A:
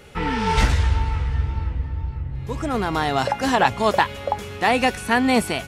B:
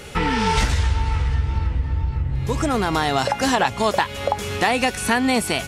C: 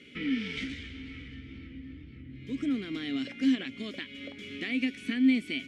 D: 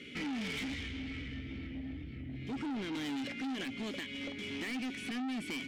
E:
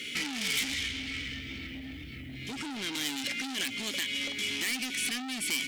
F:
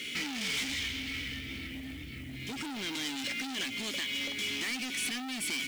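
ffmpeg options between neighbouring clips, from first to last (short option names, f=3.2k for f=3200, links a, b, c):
-af "equalizer=f=7.6k:w=0.48:g=5.5,acompressor=threshold=-26dB:ratio=3,volume=7.5dB"
-filter_complex "[0:a]asplit=3[a][b][c];[a]bandpass=f=270:t=q:w=8,volume=0dB[d];[b]bandpass=f=2.29k:t=q:w=8,volume=-6dB[e];[c]bandpass=f=3.01k:t=q:w=8,volume=-9dB[f];[d][e][f]amix=inputs=3:normalize=0"
-af "alimiter=level_in=2dB:limit=-24dB:level=0:latency=1:release=39,volume=-2dB,asoftclip=type=tanh:threshold=-39dB,volume=4dB"
-af "acompressor=threshold=-39dB:ratio=6,crystalizer=i=10:c=0"
-af "asoftclip=type=tanh:threshold=-26.5dB,acrusher=bits=4:mode=log:mix=0:aa=0.000001"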